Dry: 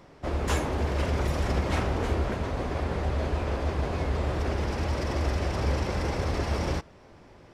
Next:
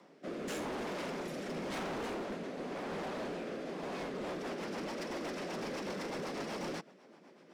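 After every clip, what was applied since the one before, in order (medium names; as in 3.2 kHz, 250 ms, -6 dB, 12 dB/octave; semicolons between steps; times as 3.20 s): steep high-pass 170 Hz 48 dB/octave; rotary cabinet horn 0.9 Hz, later 8 Hz, at 3.79 s; hard clipper -33 dBFS, distortion -10 dB; trim -3 dB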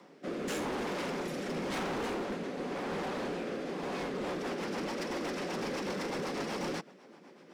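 band-stop 640 Hz, Q 12; trim +4 dB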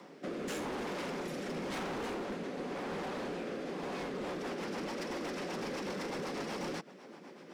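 compression 2.5:1, threshold -43 dBFS, peak gain reduction 7 dB; trim +3.5 dB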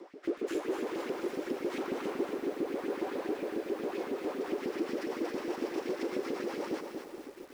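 peaking EQ 340 Hz +12.5 dB 0.99 oct; LFO high-pass saw up 7.3 Hz 220–2800 Hz; bit-crushed delay 234 ms, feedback 55%, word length 8-bit, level -5.5 dB; trim -6 dB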